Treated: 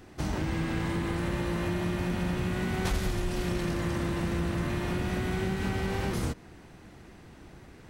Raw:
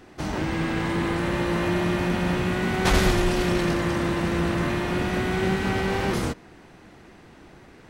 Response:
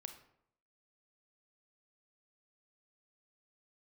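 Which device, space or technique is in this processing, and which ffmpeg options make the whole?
ASMR close-microphone chain: -af "lowshelf=f=120:g=4.5,acompressor=threshold=-24dB:ratio=6,equalizer=f=79:w=0.47:g=4.5,highshelf=f=6.5k:g=7,volume=-4.5dB"

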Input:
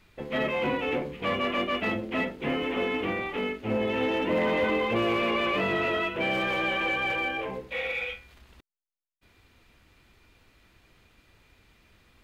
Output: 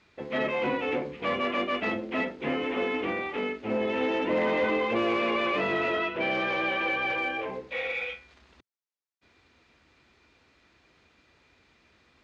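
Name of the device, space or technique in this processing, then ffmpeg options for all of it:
car door speaker: -filter_complex "[0:a]asettb=1/sr,asplit=3[a][b][c];[a]atrim=end=5.974[d];[b]atrim=start=5.97:end=7.17,asetpts=PTS-STARTPTS,afade=t=in:d=0.004:c=qsin,afade=t=out:st=1.196:d=0.004:c=qsin,lowpass=f=6.2k:w=0.5412,lowpass=f=6.2k:w=1.3066[e];[c]atrim=start=7.166[f];[d][e]acrossfade=d=0.004:c1=hsin:c2=qsin[g];[g][f]acrossfade=d=0.004:c1=qsin:c2=hsin,highpass=90,equalizer=f=110:t=q:w=4:g=-9,equalizer=f=180:t=q:w=4:g=-5,equalizer=f=3k:t=q:w=4:g=-3,lowpass=f=6.7k:w=0.5412,lowpass=f=6.7k:w=1.3066"

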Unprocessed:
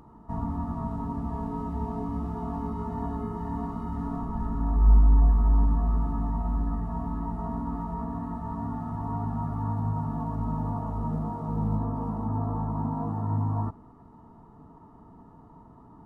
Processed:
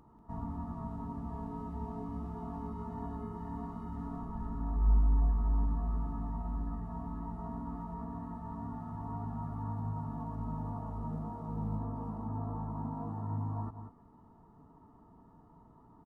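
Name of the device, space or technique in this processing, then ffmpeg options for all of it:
ducked delay: -filter_complex "[0:a]asplit=3[a][b][c];[b]adelay=189,volume=-8.5dB[d];[c]apad=whole_len=716227[e];[d][e]sidechaincompress=threshold=-40dB:ratio=8:attack=16:release=110[f];[a][f]amix=inputs=2:normalize=0,volume=-8.5dB"

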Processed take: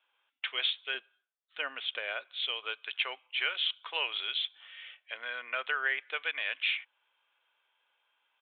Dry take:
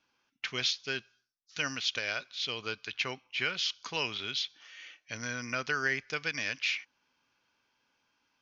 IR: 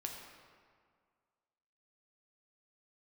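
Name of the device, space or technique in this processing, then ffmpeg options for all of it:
musical greeting card: -filter_complex "[0:a]asettb=1/sr,asplit=3[a][b][c];[a]atrim=end=0.944[d];[b]atrim=start=0.94:end=2.34,asetpts=PTS-STARTPTS,afade=t=in:d=0.004:c=qsin,afade=t=out:st=1.396:d=0.004:c=qsin,aemphasis=mode=reproduction:type=riaa[e];[c]atrim=start=2.336[f];[d][e]acrossfade=d=0.004:c1=hsin:c2=qsin[g];[g][f]acrossfade=d=0.004:c1=qsin:c2=hsin,aresample=8000,aresample=44100,highpass=f=510:w=0.5412,highpass=f=510:w=1.3066,equalizer=f=3.3k:t=o:w=0.38:g=4.5"

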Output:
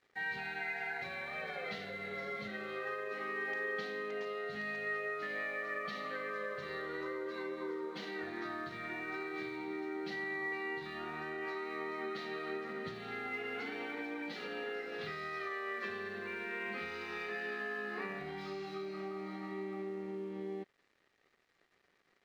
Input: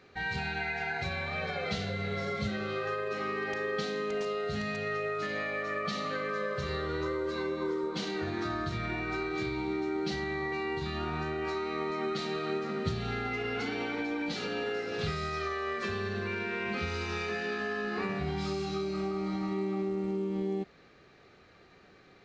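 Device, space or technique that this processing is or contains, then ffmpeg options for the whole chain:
pocket radio on a weak battery: -af "highpass=250,lowpass=3.9k,aeval=exprs='sgn(val(0))*max(abs(val(0))-0.00119,0)':c=same,equalizer=f=1.9k:t=o:w=0.24:g=8,volume=-6.5dB"

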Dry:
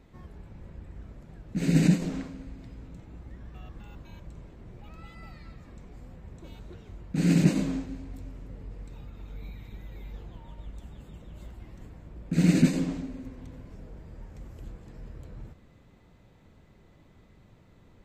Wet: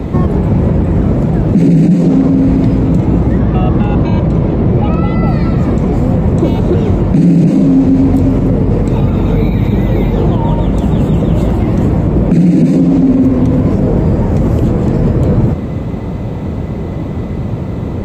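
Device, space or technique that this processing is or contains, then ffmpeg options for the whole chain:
mastering chain: -filter_complex "[0:a]asettb=1/sr,asplit=3[a][b][c];[a]atrim=end=3.394[d];[b]atrim=start=3.39:end=5.27,asetpts=PTS-STARTPTS,afade=t=in:d=0.004:c=qsin,afade=t=out:st=1.876:d=0.004:c=qsin,lowpass=5.2k[e];[c]atrim=start=5.266[f];[d][e]acrossfade=d=0.004:c1=hsin:c2=qsin[g];[g][f]acrossfade=d=0.004:c1=qsin:c2=hsin,highpass=57,equalizer=f=1.6k:t=o:w=0.4:g=-3.5,acrossover=split=110|950[h][i][j];[h]acompressor=threshold=-57dB:ratio=4[k];[i]acompressor=threshold=-37dB:ratio=4[l];[j]acompressor=threshold=-58dB:ratio=4[m];[k][l][m]amix=inputs=3:normalize=0,acompressor=threshold=-45dB:ratio=1.5,asoftclip=type=tanh:threshold=-33dB,tiltshelf=f=1.3k:g=8,alimiter=level_in=34dB:limit=-1dB:release=50:level=0:latency=1,volume=-1dB"

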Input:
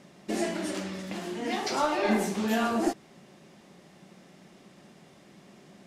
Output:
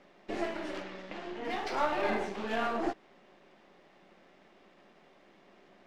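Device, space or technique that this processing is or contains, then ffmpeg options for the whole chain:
crystal radio: -filter_complex "[0:a]highpass=350,lowpass=3k,aeval=exprs='if(lt(val(0),0),0.447*val(0),val(0))':c=same,asettb=1/sr,asplit=3[a][b][c];[a]atrim=end=0.824[d];[b]atrim=start=0.82:end=1.45,asetpts=PTS-STARTPTS,afade=t=in:d=0.004:c=qsin,afade=t=out:st=0.626:d=0.004:c=qsin,lowpass=7.1k[e];[c]atrim=start=1.446[f];[d][e]acrossfade=d=0.004:c1=hsin:c2=qsin[g];[g][f]acrossfade=d=0.004:c1=qsin:c2=hsin"

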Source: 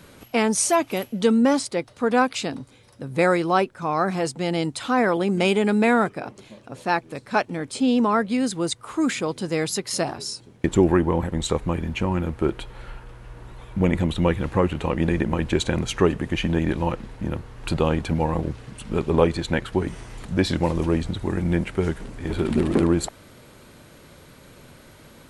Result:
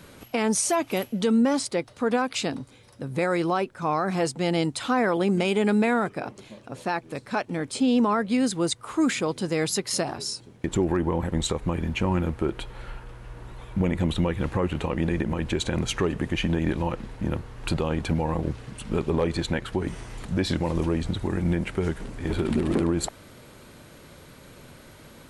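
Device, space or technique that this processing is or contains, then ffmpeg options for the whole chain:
clipper into limiter: -af "asoftclip=type=hard:threshold=-7.5dB,alimiter=limit=-14.5dB:level=0:latency=1:release=114"

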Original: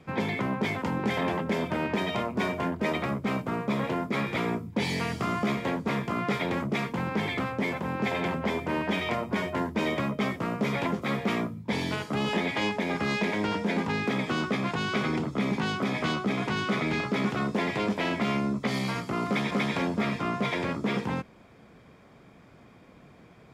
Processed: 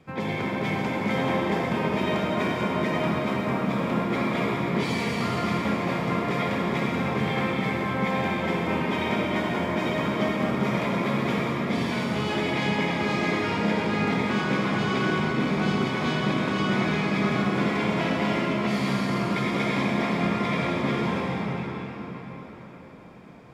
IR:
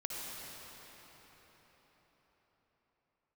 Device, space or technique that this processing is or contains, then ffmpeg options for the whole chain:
cathedral: -filter_complex "[1:a]atrim=start_sample=2205[a];[0:a][a]afir=irnorm=-1:irlink=0,volume=1dB"

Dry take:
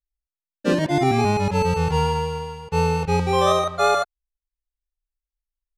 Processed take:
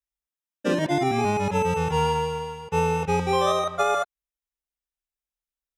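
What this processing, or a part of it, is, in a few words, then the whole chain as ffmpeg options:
PA system with an anti-feedback notch: -af "highpass=f=160:p=1,asuperstop=centerf=4400:order=12:qfactor=7.4,alimiter=limit=-12.5dB:level=0:latency=1:release=258"

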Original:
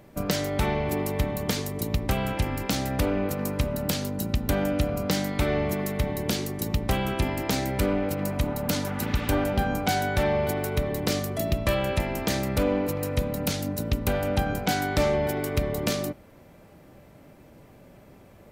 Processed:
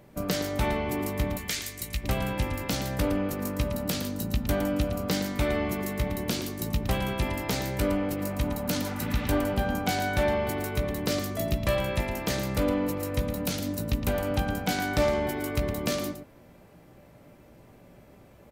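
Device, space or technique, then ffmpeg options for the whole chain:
slapback doubling: -filter_complex "[0:a]asettb=1/sr,asplit=3[a][b][c];[a]atrim=end=1.374[d];[b]atrim=start=1.37:end=2.04,asetpts=PTS-STARTPTS,afade=t=in:d=0.004:c=qsin,afade=t=out:st=0.666:d=0.004:c=qsin,equalizer=f=125:t=o:w=1:g=-10,equalizer=f=250:t=o:w=1:g=-10,equalizer=f=500:t=o:w=1:g=-7,equalizer=f=1k:t=o:w=1:g=-9,equalizer=f=2k:t=o:w=1:g=6,equalizer=f=8k:t=o:w=1:g=5[e];[c]atrim=start=2.036[f];[d][e]acrossfade=d=0.004:c1=hsin:c2=qsin[g];[g][f]acrossfade=d=0.004:c1=qsin:c2=hsin,asplit=3[h][i][j];[i]adelay=17,volume=-8dB[k];[j]adelay=113,volume=-9dB[l];[h][k][l]amix=inputs=3:normalize=0,volume=-3dB"

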